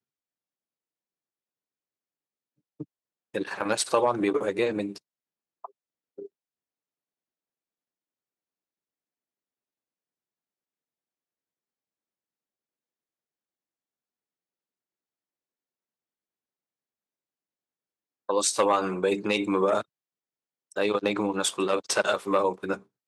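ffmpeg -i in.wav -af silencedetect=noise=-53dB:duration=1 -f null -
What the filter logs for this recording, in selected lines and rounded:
silence_start: 0.00
silence_end: 2.80 | silence_duration: 2.80
silence_start: 6.27
silence_end: 18.29 | silence_duration: 12.02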